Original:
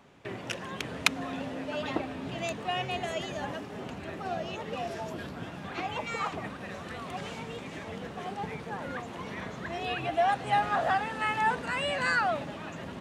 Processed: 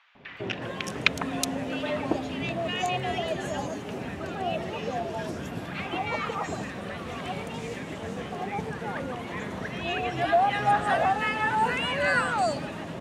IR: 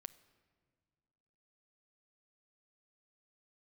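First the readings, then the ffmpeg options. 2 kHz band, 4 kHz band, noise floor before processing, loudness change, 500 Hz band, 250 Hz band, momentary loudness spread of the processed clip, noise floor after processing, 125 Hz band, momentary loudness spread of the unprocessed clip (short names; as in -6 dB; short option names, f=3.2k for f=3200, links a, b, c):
+3.5 dB, +3.0 dB, -42 dBFS, +3.5 dB, +4.5 dB, +5.0 dB, 11 LU, -38 dBFS, +5.0 dB, 12 LU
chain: -filter_complex "[0:a]acrossover=split=1200|4400[a][b][c];[a]adelay=150[d];[c]adelay=370[e];[d][b][e]amix=inputs=3:normalize=0,volume=5dB"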